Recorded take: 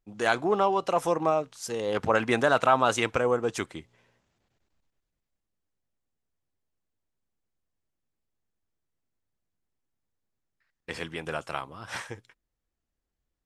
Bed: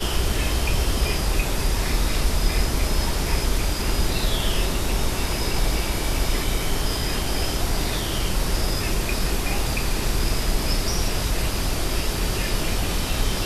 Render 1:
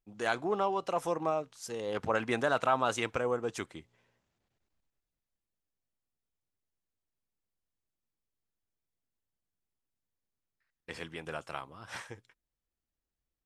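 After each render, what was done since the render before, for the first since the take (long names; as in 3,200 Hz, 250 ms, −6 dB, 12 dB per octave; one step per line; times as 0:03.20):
level −6.5 dB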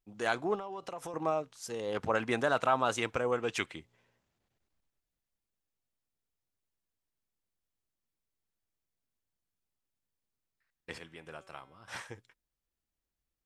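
0:00.55–0:01.14: downward compressor 16 to 1, threshold −36 dBFS
0:03.32–0:03.76: parametric band 2,600 Hz +12 dB 1.3 octaves
0:10.98–0:11.88: tuned comb filter 190 Hz, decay 1 s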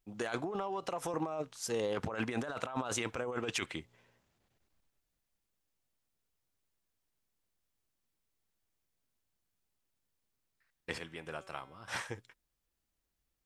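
compressor whose output falls as the input rises −36 dBFS, ratio −1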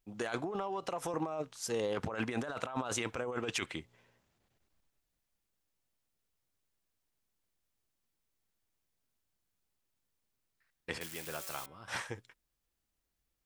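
0:11.01–0:11.66: spike at every zero crossing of −34 dBFS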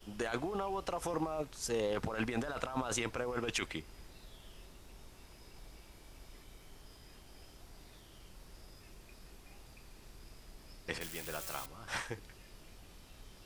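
mix in bed −32 dB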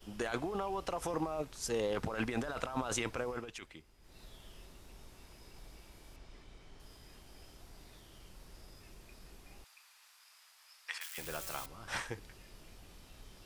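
0:03.27–0:04.22: duck −12 dB, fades 0.22 s
0:06.16–0:06.80: high-frequency loss of the air 72 metres
0:09.64–0:11.18: high-pass filter 1,000 Hz 24 dB per octave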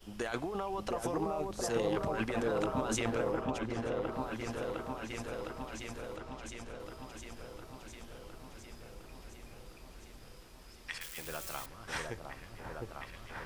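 echo whose low-pass opens from repeat to repeat 708 ms, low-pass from 750 Hz, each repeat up 1 octave, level 0 dB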